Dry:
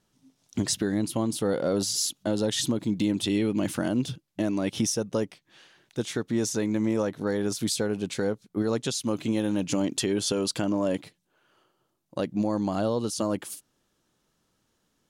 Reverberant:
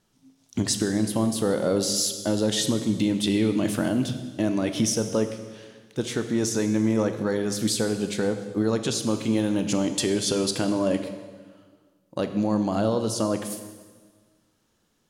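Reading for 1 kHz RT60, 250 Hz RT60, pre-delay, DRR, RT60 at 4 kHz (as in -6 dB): 1.4 s, 1.8 s, 16 ms, 7.5 dB, 1.4 s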